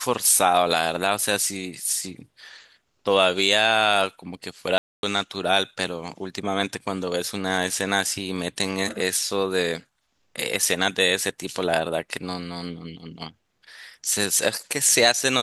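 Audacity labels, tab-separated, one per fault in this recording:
4.780000	5.030000	gap 0.251 s

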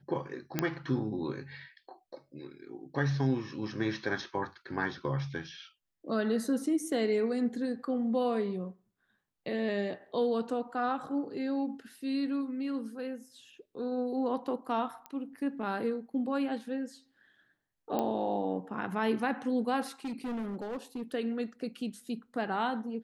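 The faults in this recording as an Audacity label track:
0.590000	0.590000	pop -13 dBFS
15.060000	15.060000	pop -26 dBFS
17.990000	17.990000	pop -18 dBFS
20.050000	21.020000	clipped -33 dBFS

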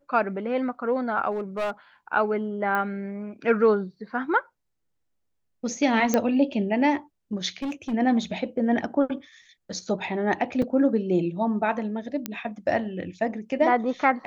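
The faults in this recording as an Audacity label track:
1.310000	1.710000	clipped -24 dBFS
2.750000	2.750000	pop -15 dBFS
6.140000	6.140000	pop -8 dBFS
7.570000	7.940000	clipped -26 dBFS
10.620000	10.620000	gap 3.9 ms
12.260000	12.260000	pop -12 dBFS

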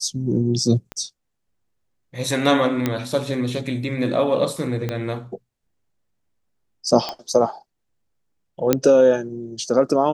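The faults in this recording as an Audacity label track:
0.920000	0.920000	pop -17 dBFS
2.860000	2.860000	pop -7 dBFS
4.890000	4.890000	pop -12 dBFS
7.090000	7.090000	pop -12 dBFS
8.730000	8.730000	pop -2 dBFS

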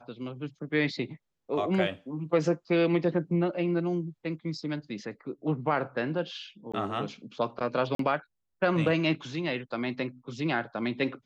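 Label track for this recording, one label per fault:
6.720000	6.740000	gap 16 ms
7.950000	7.990000	gap 43 ms

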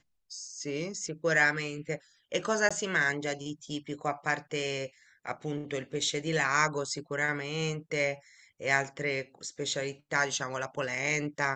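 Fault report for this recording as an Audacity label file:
2.690000	2.710000	gap 16 ms

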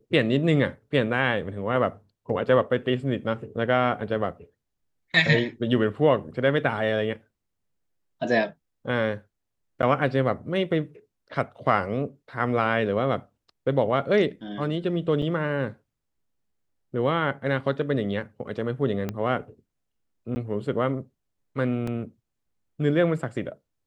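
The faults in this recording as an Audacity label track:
9.820000	9.830000	gap 9.7 ms
15.220000	15.220000	gap 2.6 ms
19.090000	19.090000	pop -16 dBFS
20.350000	20.360000	gap 10 ms
21.870000	21.870000	gap 4.5 ms

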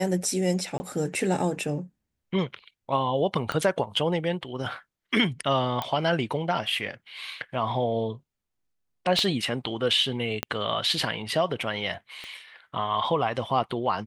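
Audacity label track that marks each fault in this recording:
0.780000	0.800000	gap 20 ms
3.520000	3.520000	pop -15 dBFS
5.820000	5.820000	pop -14 dBFS
9.190000	9.190000	pop -13 dBFS
10.430000	10.430000	pop -10 dBFS
12.240000	12.240000	pop -25 dBFS

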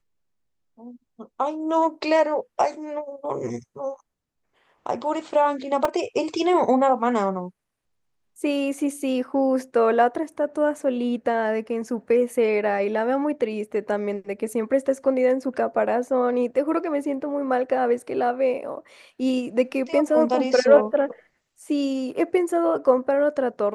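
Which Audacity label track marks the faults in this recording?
5.850000	5.850000	gap 3 ms

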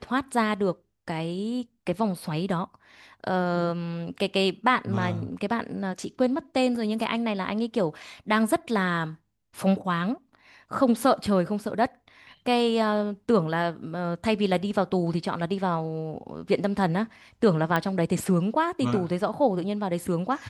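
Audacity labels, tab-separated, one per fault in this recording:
17.760000	17.760000	pop -12 dBFS

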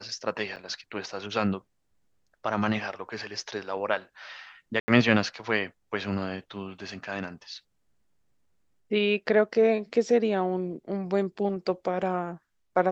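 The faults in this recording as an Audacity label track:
0.560000	0.570000	gap 7.5 ms
4.800000	4.880000	gap 80 ms

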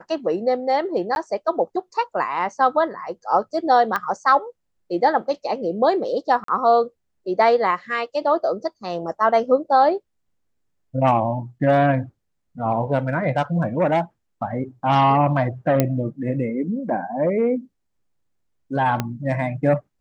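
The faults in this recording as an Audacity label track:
1.150000	1.160000	gap 11 ms
3.960000	3.960000	pop -10 dBFS
6.440000	6.480000	gap 43 ms
15.800000	15.800000	pop -4 dBFS
19.000000	19.000000	pop -8 dBFS

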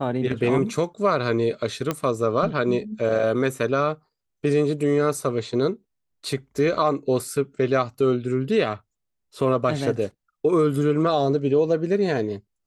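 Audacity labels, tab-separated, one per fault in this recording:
1.910000	1.910000	pop -10 dBFS

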